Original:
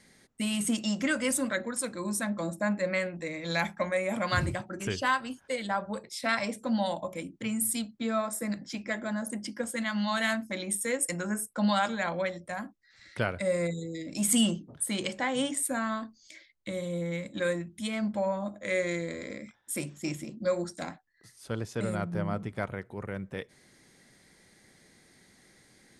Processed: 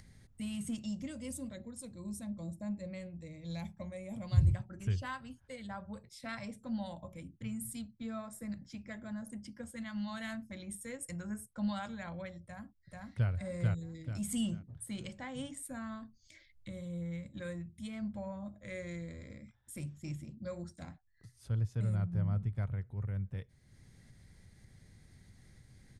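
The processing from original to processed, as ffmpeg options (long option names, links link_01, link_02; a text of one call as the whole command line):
ffmpeg -i in.wav -filter_complex "[0:a]asettb=1/sr,asplit=3[link_01][link_02][link_03];[link_01]atrim=end=0.864[link_04];[link_02]atrim=start=0.86:end=4.49,asetpts=PTS-STARTPTS,afade=type=in:duration=0.004:curve=qsin,afade=type=out:start_time=3.626:duration=0.004:curve=qsin,equalizer=frequency=1500:width=1.4:gain=-15[link_05];[link_03]atrim=start=4.486[link_06];[link_04][link_05]acrossfade=duration=0.004:curve1=hsin:curve2=qsin[link_07];[link_07][link_06]acrossfade=duration=0.004:curve1=qsin:curve2=hsin,asplit=2[link_08][link_09];[link_09]afade=type=in:start_time=12.43:duration=0.01,afade=type=out:start_time=13.3:duration=0.01,aecho=0:1:440|880|1320|1760|2200:0.944061|0.330421|0.115647|0.0404766|0.0141668[link_10];[link_08][link_10]amix=inputs=2:normalize=0,firequalizer=gain_entry='entry(100,0);entry(180,-14);entry(330,-23)':delay=0.05:min_phase=1,acompressor=mode=upward:threshold=-57dB:ratio=2.5,volume=8dB" out.wav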